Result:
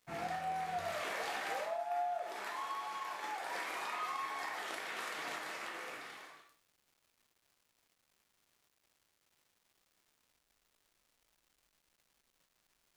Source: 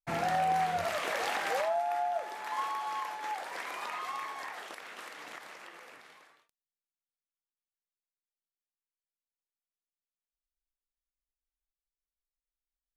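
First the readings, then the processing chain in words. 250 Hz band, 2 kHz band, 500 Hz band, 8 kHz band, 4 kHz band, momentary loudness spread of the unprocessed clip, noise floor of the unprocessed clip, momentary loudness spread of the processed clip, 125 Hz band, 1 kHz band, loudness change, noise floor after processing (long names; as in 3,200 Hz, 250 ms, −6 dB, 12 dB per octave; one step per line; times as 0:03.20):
−6.5 dB, −3.5 dB, −6.5 dB, −3.0 dB, −3.0 dB, 16 LU, below −85 dBFS, 5 LU, can't be measured, −6.5 dB, −6.0 dB, −80 dBFS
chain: fade in at the beginning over 0.61 s
downward compressor 6 to 1, threshold −43 dBFS, peak gain reduction 15.5 dB
reverb whose tail is shaped and stops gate 190 ms falling, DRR 0.5 dB
surface crackle 530 per second −64 dBFS
level +3 dB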